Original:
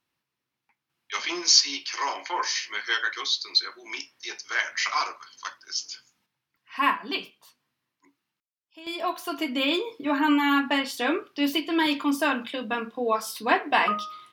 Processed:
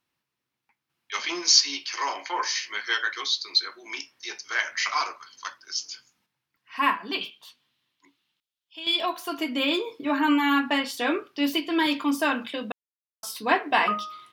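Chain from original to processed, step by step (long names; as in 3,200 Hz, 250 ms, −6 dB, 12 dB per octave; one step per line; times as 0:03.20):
0:07.21–0:09.06: parametric band 3,400 Hz +14 dB 0.86 octaves
0:12.72–0:13.23: silence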